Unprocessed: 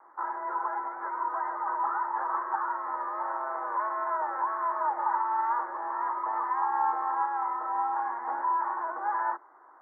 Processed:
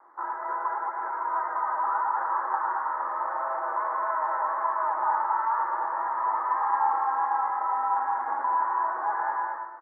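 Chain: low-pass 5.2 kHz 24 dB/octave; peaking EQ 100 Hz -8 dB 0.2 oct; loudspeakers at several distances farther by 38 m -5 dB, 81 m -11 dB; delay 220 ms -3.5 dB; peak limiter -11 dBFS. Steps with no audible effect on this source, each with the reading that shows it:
low-pass 5.2 kHz: input has nothing above 1.9 kHz; peaking EQ 100 Hz: input has nothing below 320 Hz; peak limiter -11 dBFS: peak at its input -13.0 dBFS

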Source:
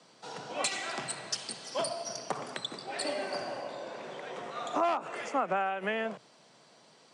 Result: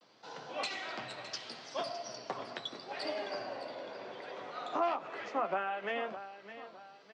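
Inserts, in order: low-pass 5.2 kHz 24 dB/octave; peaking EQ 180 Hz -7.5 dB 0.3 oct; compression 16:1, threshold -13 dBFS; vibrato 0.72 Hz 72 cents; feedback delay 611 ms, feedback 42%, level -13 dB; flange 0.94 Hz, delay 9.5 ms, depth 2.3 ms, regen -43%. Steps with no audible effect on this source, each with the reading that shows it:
compression, threshold -13 dBFS: peak at its input -18.5 dBFS

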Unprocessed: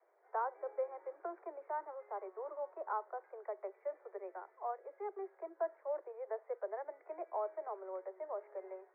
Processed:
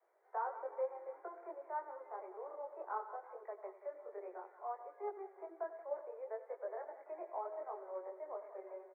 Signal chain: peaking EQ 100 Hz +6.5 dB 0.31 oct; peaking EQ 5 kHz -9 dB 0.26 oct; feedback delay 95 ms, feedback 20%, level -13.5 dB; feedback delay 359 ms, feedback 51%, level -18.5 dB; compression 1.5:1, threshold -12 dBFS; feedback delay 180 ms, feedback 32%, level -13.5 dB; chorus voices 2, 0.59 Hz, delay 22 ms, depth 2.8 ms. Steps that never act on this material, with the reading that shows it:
peaking EQ 100 Hz: input has nothing below 300 Hz; peaking EQ 5 kHz: input has nothing above 1.7 kHz; compression, threshold -12 dBFS: peak at its input -25.5 dBFS

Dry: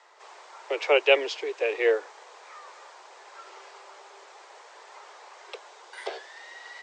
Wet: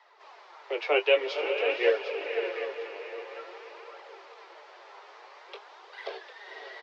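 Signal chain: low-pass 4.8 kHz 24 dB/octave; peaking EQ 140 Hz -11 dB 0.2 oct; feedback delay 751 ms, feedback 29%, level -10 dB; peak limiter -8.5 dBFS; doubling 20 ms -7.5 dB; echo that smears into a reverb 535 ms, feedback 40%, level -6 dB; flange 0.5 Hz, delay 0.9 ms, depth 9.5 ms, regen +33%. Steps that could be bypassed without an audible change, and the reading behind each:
peaking EQ 140 Hz: input has nothing below 300 Hz

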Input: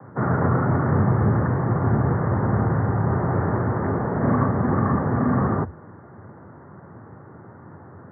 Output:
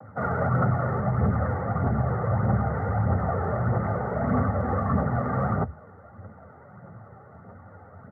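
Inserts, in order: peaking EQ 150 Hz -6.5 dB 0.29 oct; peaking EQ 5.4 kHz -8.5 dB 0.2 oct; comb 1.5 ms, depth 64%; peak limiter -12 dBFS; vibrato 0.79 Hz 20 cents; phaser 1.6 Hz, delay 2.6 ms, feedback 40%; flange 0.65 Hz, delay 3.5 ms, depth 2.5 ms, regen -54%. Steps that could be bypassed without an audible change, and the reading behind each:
peaking EQ 5.4 kHz: input has nothing above 1.8 kHz

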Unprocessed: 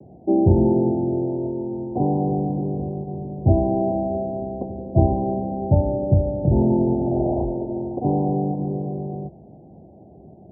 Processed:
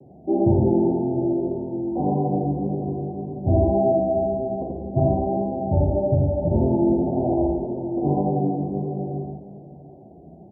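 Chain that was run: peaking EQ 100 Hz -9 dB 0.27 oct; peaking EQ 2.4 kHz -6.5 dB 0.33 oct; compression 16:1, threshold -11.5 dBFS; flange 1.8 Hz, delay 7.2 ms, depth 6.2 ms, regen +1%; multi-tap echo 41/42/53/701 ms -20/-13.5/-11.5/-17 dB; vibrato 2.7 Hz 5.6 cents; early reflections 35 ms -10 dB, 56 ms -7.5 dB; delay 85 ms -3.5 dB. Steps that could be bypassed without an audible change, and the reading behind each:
peaking EQ 2.4 kHz: input has nothing above 910 Hz

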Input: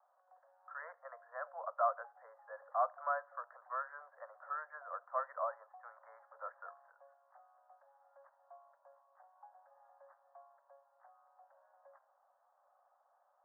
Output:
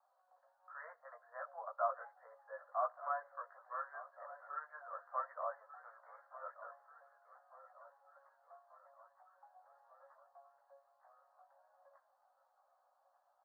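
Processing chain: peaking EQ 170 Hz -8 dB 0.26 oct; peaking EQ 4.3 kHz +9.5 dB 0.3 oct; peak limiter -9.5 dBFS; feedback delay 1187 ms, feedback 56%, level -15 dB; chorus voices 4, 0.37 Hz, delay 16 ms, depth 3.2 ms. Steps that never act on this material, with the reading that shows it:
peaking EQ 170 Hz: input has nothing below 430 Hz; peaking EQ 4.3 kHz: input has nothing above 1.9 kHz; peak limiter -9.5 dBFS: peak at its input -20.5 dBFS

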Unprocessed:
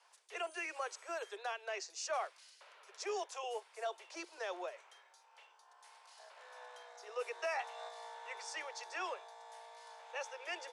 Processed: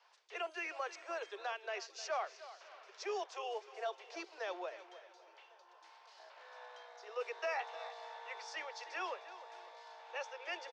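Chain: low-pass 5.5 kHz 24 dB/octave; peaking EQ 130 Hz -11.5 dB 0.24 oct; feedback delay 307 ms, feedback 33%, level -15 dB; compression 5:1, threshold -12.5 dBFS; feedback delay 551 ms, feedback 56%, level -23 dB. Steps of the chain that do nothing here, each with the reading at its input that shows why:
peaking EQ 130 Hz: input has nothing below 300 Hz; compression, threshold -12.5 dBFS: peak at its input -27.0 dBFS

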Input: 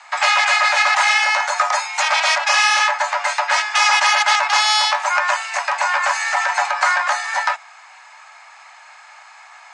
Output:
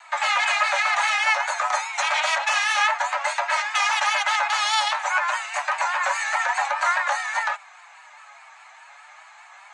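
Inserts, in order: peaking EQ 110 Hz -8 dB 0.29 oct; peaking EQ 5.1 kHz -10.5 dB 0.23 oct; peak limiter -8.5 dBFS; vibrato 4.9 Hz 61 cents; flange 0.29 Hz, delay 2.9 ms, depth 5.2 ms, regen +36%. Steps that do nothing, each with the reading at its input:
peaking EQ 110 Hz: input has nothing below 510 Hz

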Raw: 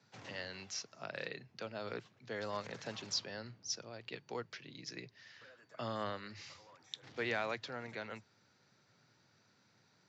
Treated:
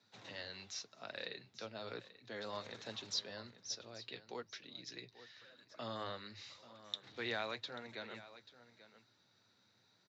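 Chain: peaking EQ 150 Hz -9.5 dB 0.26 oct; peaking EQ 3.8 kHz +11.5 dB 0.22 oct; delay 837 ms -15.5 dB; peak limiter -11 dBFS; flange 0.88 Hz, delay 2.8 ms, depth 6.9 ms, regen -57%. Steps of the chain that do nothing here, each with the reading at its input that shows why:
peak limiter -11 dBFS: peak at its input -17.0 dBFS

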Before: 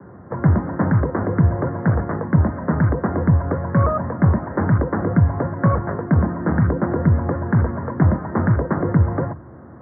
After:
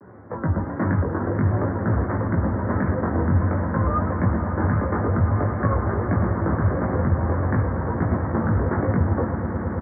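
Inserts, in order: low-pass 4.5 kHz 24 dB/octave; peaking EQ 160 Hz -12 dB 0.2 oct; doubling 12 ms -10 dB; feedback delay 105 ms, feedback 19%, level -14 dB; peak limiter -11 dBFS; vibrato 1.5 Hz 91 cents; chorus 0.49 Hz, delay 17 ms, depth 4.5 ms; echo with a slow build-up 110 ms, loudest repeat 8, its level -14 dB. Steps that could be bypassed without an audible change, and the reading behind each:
low-pass 4.5 kHz: input has nothing above 1.7 kHz

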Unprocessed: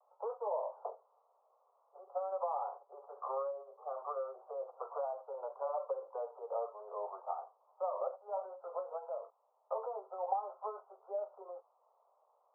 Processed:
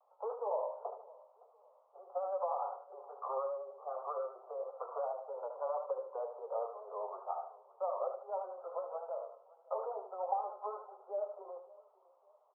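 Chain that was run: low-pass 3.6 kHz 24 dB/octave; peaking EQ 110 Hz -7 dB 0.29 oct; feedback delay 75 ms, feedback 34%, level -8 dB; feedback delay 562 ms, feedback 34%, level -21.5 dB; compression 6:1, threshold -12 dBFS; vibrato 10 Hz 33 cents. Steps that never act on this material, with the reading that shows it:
low-pass 3.6 kHz: input has nothing above 1.4 kHz; peaking EQ 110 Hz: input has nothing below 360 Hz; compression, threshold -12 dBFS: peak at its input -21.5 dBFS

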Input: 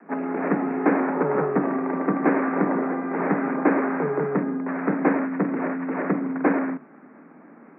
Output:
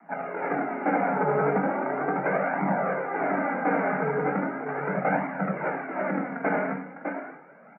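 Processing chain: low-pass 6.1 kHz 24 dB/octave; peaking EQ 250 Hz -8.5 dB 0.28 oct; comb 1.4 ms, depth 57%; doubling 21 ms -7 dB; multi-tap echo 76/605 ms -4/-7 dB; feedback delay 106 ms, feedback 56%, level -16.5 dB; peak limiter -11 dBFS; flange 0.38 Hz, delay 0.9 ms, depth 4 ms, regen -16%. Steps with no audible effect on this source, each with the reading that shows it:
low-pass 6.1 kHz: input has nothing above 2.2 kHz

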